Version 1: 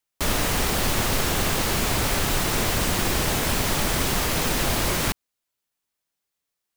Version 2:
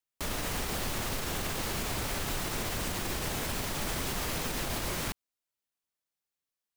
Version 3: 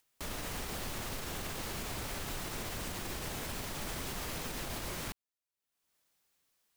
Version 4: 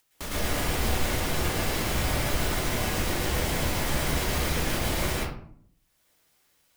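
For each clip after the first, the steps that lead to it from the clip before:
peak limiter -15 dBFS, peak gain reduction 5.5 dB; trim -8.5 dB
upward compressor, threshold -54 dBFS; trim -6 dB
reverberation RT60 0.60 s, pre-delay 106 ms, DRR -6 dB; trim +5 dB

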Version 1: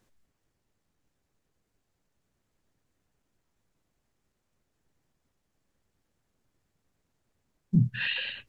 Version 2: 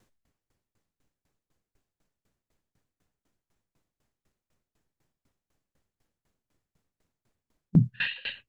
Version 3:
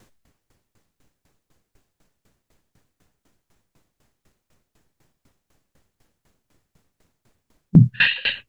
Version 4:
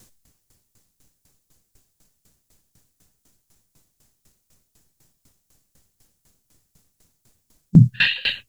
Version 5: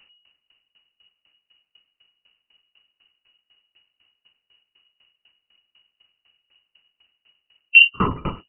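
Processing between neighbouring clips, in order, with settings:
sawtooth tremolo in dB decaying 4 Hz, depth 25 dB; trim +5.5 dB
loudness maximiser +13.5 dB; trim -1 dB
tone controls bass +5 dB, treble +15 dB; trim -3.5 dB
frequency inversion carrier 2.9 kHz; trim -1 dB

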